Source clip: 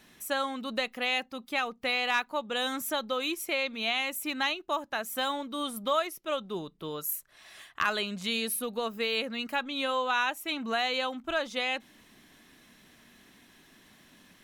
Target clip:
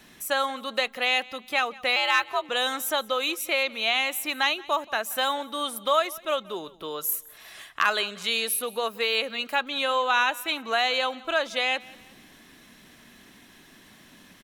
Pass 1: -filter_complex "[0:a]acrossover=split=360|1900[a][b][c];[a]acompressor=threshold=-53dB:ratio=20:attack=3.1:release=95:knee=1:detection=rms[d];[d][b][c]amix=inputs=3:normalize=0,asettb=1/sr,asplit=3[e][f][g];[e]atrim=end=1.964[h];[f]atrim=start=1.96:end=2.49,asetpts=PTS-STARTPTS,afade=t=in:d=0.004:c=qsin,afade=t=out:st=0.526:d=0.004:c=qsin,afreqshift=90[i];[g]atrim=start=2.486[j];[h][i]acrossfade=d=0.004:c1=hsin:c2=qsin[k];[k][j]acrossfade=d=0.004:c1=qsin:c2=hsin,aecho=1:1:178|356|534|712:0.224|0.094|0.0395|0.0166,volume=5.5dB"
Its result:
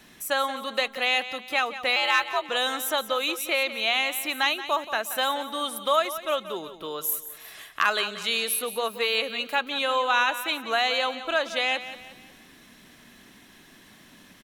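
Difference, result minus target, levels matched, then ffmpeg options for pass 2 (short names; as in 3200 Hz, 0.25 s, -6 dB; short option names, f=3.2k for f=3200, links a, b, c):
echo-to-direct +9 dB
-filter_complex "[0:a]acrossover=split=360|1900[a][b][c];[a]acompressor=threshold=-53dB:ratio=20:attack=3.1:release=95:knee=1:detection=rms[d];[d][b][c]amix=inputs=3:normalize=0,asettb=1/sr,asplit=3[e][f][g];[e]atrim=end=1.964[h];[f]atrim=start=1.96:end=2.49,asetpts=PTS-STARTPTS,afade=t=in:d=0.004:c=qsin,afade=t=out:st=0.526:d=0.004:c=qsin,afreqshift=90[i];[g]atrim=start=2.486[j];[h][i]acrossfade=d=0.004:c1=hsin:c2=qsin[k];[k][j]acrossfade=d=0.004:c1=qsin:c2=hsin,aecho=1:1:178|356|534:0.0794|0.0334|0.014,volume=5.5dB"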